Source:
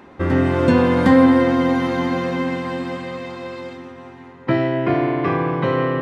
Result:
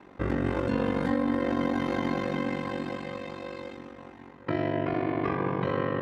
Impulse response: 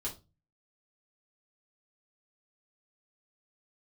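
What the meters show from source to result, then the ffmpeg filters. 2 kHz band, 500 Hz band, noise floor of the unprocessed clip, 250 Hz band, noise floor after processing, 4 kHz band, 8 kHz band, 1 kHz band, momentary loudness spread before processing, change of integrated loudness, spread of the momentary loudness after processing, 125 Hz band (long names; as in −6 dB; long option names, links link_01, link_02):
−10.0 dB, −10.5 dB, −42 dBFS, −11.5 dB, −50 dBFS, −9.5 dB, can't be measured, −10.0 dB, 18 LU, −11.5 dB, 13 LU, −10.5 dB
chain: -af "alimiter=limit=-12.5dB:level=0:latency=1:release=52,aeval=exprs='val(0)*sin(2*PI*24*n/s)':channel_layout=same,volume=-4.5dB"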